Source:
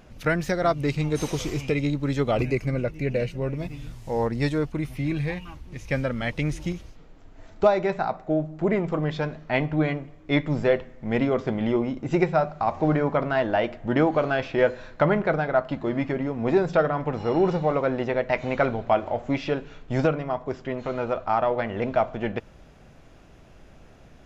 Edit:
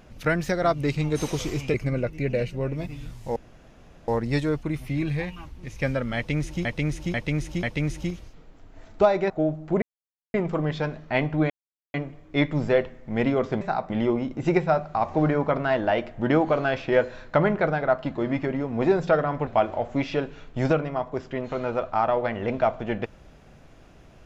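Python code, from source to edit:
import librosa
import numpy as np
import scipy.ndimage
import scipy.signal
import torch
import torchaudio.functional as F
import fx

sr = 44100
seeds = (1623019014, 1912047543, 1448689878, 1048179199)

y = fx.edit(x, sr, fx.cut(start_s=1.74, length_s=0.81),
    fx.insert_room_tone(at_s=4.17, length_s=0.72),
    fx.repeat(start_s=6.25, length_s=0.49, count=4),
    fx.move(start_s=7.92, length_s=0.29, to_s=11.56),
    fx.insert_silence(at_s=8.73, length_s=0.52),
    fx.insert_silence(at_s=9.89, length_s=0.44),
    fx.cut(start_s=17.13, length_s=1.68), tone=tone)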